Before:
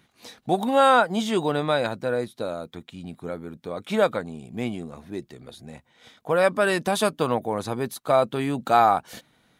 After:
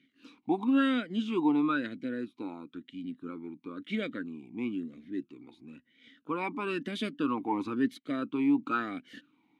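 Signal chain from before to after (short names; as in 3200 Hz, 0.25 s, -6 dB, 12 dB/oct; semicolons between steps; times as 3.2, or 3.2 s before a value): 7.37–8.05 sample leveller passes 1; vowel sweep i-u 1 Hz; gain +6 dB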